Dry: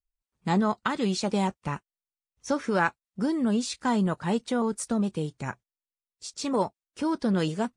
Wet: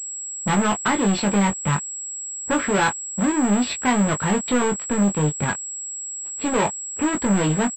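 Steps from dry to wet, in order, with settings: distance through air 260 m; waveshaping leveller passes 5; treble shelf 2 kHz +8 dB; doubling 20 ms -5 dB; level-controlled noise filter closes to 710 Hz, open at -12.5 dBFS; class-D stage that switches slowly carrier 7.7 kHz; trim -5.5 dB

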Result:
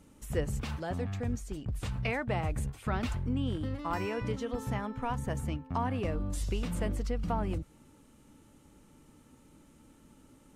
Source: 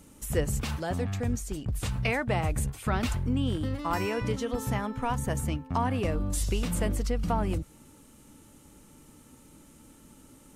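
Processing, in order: treble shelf 6 kHz -9.5 dB; trim -4 dB

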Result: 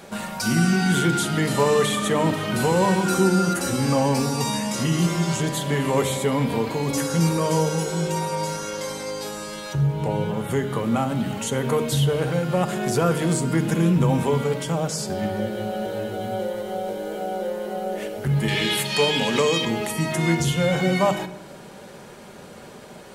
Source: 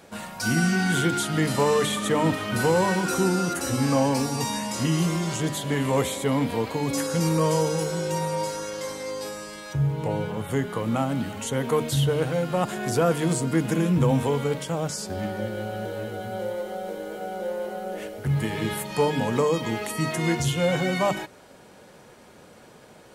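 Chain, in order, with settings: 18.48–19.65 s: frequency weighting D; in parallel at +1 dB: compression, threshold -38 dBFS, peak gain reduction 19.5 dB; on the sum: simulated room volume 3700 m³, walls furnished, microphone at 1.2 m

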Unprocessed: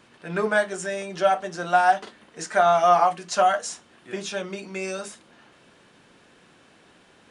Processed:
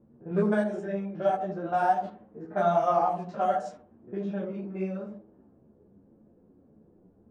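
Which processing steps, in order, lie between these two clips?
spectrogram pixelated in time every 50 ms; tilt shelf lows +9 dB, about 780 Hz; feedback echo behind a low-pass 80 ms, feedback 30%, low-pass 740 Hz, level -4.5 dB; level-controlled noise filter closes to 530 Hz, open at -16.5 dBFS; three-phase chorus; trim -3 dB

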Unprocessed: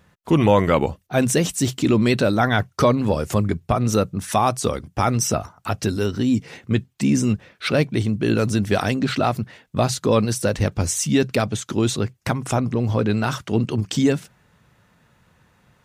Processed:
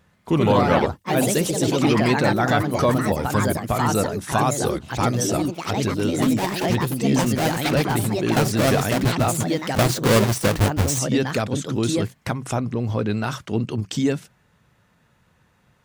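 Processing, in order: 9.40–10.99 s: square wave that keeps the level; ever faster or slower copies 134 ms, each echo +3 st, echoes 3; trim -3 dB

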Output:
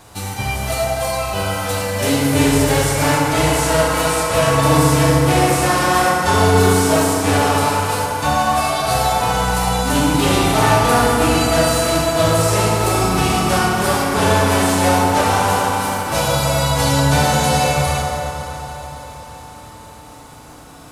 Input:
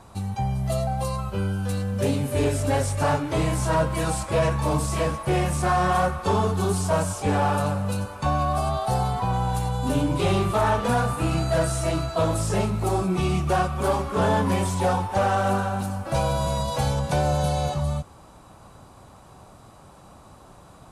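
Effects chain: formants flattened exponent 0.6; echo whose repeats swap between lows and highs 140 ms, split 1.2 kHz, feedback 84%, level -12 dB; FDN reverb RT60 3.5 s, high-frequency decay 0.4×, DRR -3.5 dB; trim +2 dB

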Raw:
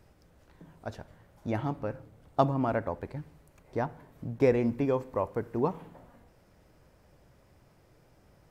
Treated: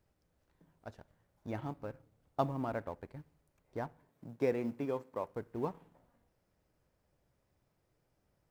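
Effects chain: companding laws mixed up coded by A; 4.09–5.29 s: high-pass 140 Hz 12 dB/octave; trim -7.5 dB

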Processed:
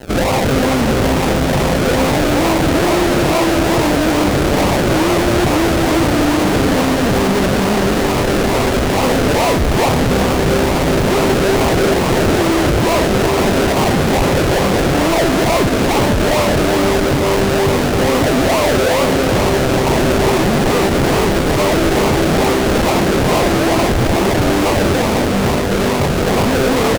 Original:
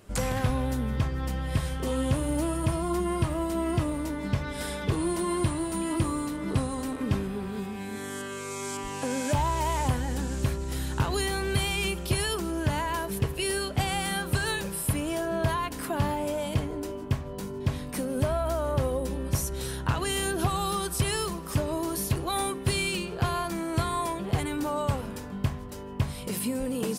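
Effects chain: high-pass 400 Hz 6 dB/octave; decimation with a swept rate 37×, swing 60% 2.3 Hz; fuzz box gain 47 dB, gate -55 dBFS; feedback delay 370 ms, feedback 57%, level -7.5 dB; loudspeaker Doppler distortion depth 0.64 ms

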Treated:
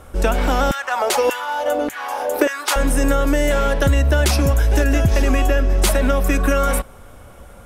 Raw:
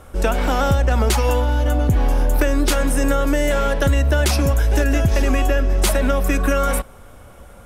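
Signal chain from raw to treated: 0.71–2.76 s: LFO high-pass saw down 1.7 Hz 320–1800 Hz; trim +1 dB

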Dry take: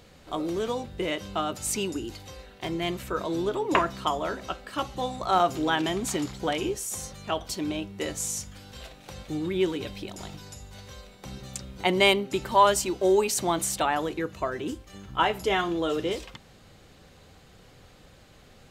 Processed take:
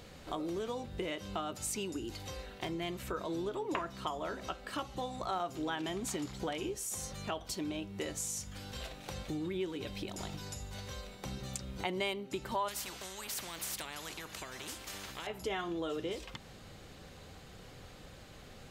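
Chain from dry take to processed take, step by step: compression 3:1, threshold -39 dBFS, peak gain reduction 18.5 dB; 12.68–15.27 s: spectrum-flattening compressor 4:1; trim +1 dB

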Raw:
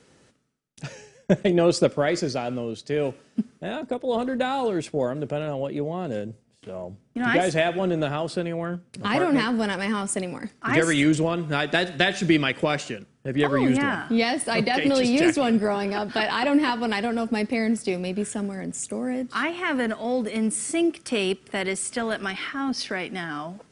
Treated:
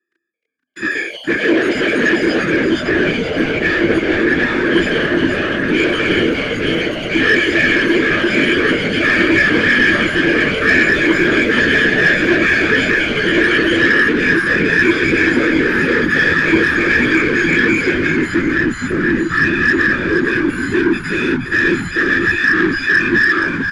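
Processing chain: partials quantised in pitch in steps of 6 st; waveshaping leveller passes 5; in parallel at +1 dB: peak limiter -10 dBFS, peak gain reduction 8 dB; on the sum: waveshaping leveller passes 5; whisper effect; two resonant band-passes 750 Hz, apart 2.3 oct; saturation -2 dBFS, distortion -17 dB; on a send: frequency-shifting echo 473 ms, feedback 55%, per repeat -81 Hz, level -6.5 dB; on the sum: ever faster or slower copies 336 ms, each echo +5 st, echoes 2, each echo -6 dB; distance through air 53 m; trim -4.5 dB

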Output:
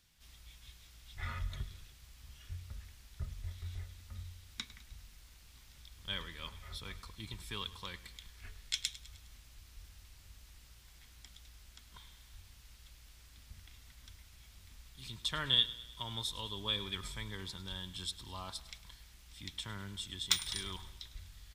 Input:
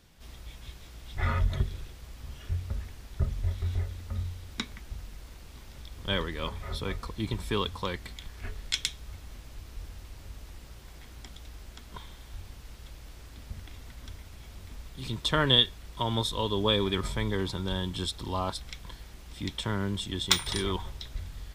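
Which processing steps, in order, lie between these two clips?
amplifier tone stack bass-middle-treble 5-5-5; feedback delay 103 ms, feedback 54%, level -17 dB; trim +1 dB

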